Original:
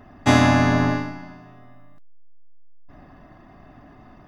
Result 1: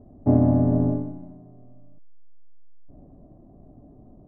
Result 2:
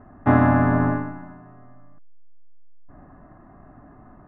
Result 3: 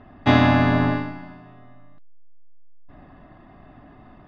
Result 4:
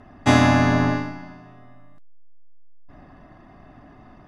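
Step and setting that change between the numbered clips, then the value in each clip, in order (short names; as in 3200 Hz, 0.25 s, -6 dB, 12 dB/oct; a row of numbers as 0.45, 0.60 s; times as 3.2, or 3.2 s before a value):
Chebyshev low-pass, frequency: 550, 1500, 3800, 11000 Hz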